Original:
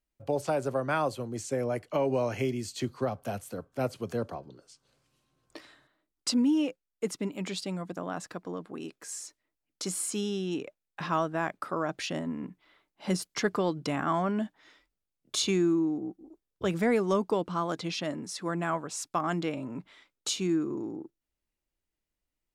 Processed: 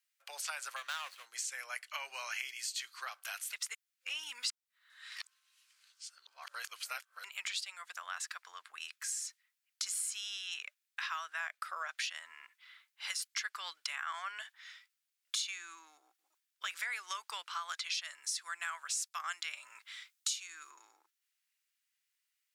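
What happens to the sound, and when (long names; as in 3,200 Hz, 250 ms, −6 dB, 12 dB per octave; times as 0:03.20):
0:00.76–0:01.26: running median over 25 samples
0:03.53–0:07.24: reverse
0:11.40–0:11.88: flat-topped bell 510 Hz +9 dB 1.1 octaves
0:17.90–0:20.71: bass and treble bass 0 dB, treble +6 dB
whole clip: high-pass filter 1,500 Hz 24 dB per octave; downward compressor 4 to 1, threshold −44 dBFS; level +7.5 dB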